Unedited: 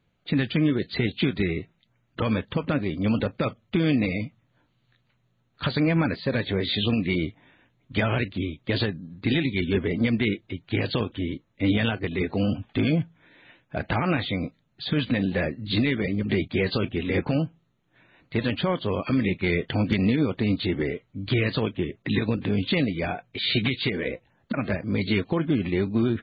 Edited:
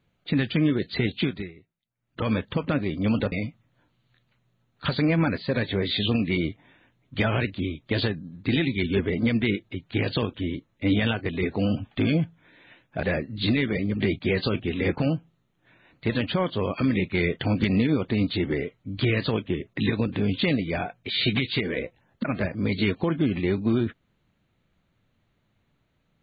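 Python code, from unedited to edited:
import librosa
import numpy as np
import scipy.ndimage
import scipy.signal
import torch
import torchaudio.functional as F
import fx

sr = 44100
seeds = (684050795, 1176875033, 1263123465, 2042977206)

y = fx.edit(x, sr, fx.fade_down_up(start_s=1.18, length_s=1.12, db=-20.5, fade_s=0.34),
    fx.cut(start_s=3.32, length_s=0.78),
    fx.cut(start_s=13.81, length_s=1.51), tone=tone)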